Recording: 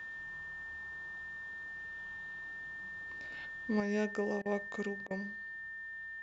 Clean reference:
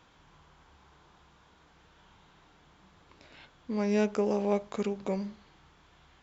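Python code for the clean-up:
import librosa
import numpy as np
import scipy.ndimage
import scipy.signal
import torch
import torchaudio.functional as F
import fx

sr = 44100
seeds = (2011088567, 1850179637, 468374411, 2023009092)

y = fx.notch(x, sr, hz=1800.0, q=30.0)
y = fx.fix_interpolate(y, sr, at_s=(4.42, 5.07), length_ms=35.0)
y = fx.fix_level(y, sr, at_s=3.8, step_db=7.0)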